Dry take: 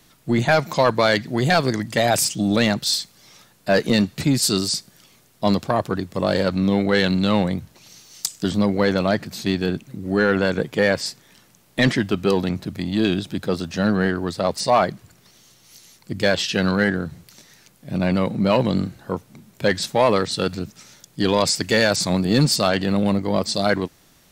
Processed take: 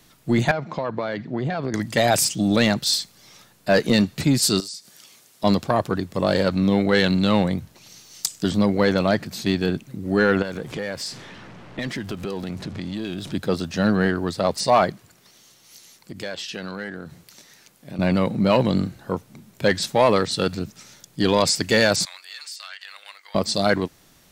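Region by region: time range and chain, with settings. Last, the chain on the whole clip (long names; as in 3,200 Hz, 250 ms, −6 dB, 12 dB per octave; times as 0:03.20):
0:00.51–0:01.74: high-pass filter 110 Hz + downward compressor 10 to 1, threshold −19 dBFS + head-to-tape spacing loss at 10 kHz 30 dB
0:04.60–0:05.44: high-pass filter 350 Hz 6 dB per octave + parametric band 7,400 Hz +6 dB 2.5 octaves + downward compressor 4 to 1, threshold −35 dBFS
0:10.42–0:13.32: converter with a step at zero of −34.5 dBFS + low-pass that shuts in the quiet parts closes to 1,700 Hz, open at −17.5 dBFS + downward compressor 4 to 1, threshold −27 dBFS
0:14.91–0:17.99: low-shelf EQ 140 Hz −11 dB + downward compressor 2.5 to 1, threshold −33 dBFS
0:22.05–0:23.35: four-pole ladder high-pass 1,300 Hz, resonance 25% + downward compressor, threshold −33 dBFS
whole clip: no processing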